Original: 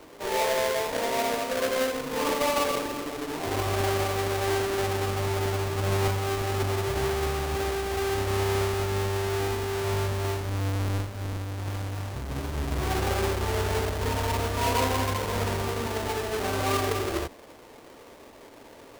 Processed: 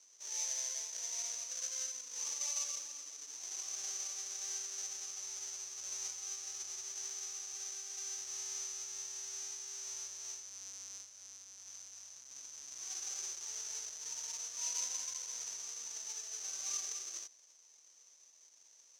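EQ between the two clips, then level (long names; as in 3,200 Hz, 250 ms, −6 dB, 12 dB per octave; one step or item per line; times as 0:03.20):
resonant band-pass 6,100 Hz, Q 18
+11.0 dB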